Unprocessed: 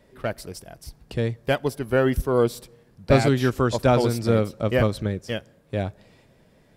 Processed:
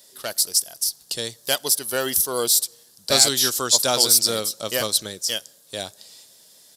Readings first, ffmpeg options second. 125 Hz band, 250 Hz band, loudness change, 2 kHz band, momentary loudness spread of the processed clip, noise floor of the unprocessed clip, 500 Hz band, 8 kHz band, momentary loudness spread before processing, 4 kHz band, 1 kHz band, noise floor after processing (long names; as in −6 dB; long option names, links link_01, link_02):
−16.0 dB, −10.0 dB, +4.0 dB, −0.5 dB, 16 LU, −58 dBFS, −5.0 dB, +23.0 dB, 13 LU, +16.0 dB, −2.0 dB, −54 dBFS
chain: -af "aresample=32000,aresample=44100,highpass=frequency=890:poles=1,aexciter=amount=6.6:drive=8.4:freq=3500,volume=1dB"